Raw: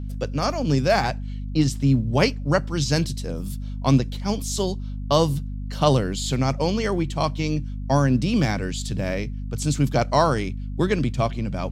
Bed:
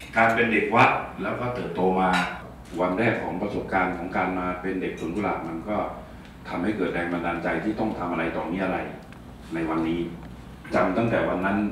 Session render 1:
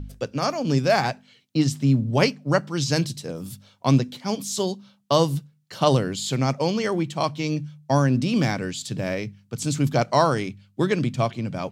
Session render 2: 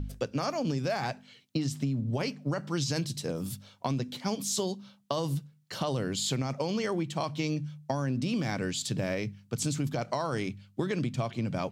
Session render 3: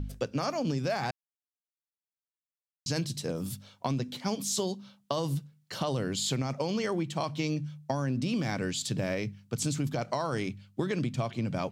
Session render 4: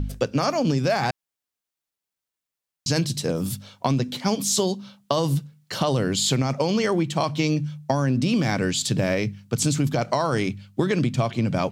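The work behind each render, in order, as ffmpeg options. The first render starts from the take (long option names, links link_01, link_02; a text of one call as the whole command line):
ffmpeg -i in.wav -af "bandreject=frequency=50:width_type=h:width=4,bandreject=frequency=100:width_type=h:width=4,bandreject=frequency=150:width_type=h:width=4,bandreject=frequency=200:width_type=h:width=4,bandreject=frequency=250:width_type=h:width=4" out.wav
ffmpeg -i in.wav -af "alimiter=limit=-14.5dB:level=0:latency=1:release=33,acompressor=threshold=-27dB:ratio=6" out.wav
ffmpeg -i in.wav -filter_complex "[0:a]asplit=3[link_01][link_02][link_03];[link_01]atrim=end=1.11,asetpts=PTS-STARTPTS,afade=type=out:start_time=1.106:duration=0.004:curve=hsin[link_04];[link_02]atrim=start=1.11:end=2.86,asetpts=PTS-STARTPTS,volume=0[link_05];[link_03]atrim=start=2.86,asetpts=PTS-STARTPTS,afade=type=in:duration=0.004:curve=hsin[link_06];[link_04][link_05][link_06]concat=n=3:v=0:a=1" out.wav
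ffmpeg -i in.wav -af "volume=8.5dB" out.wav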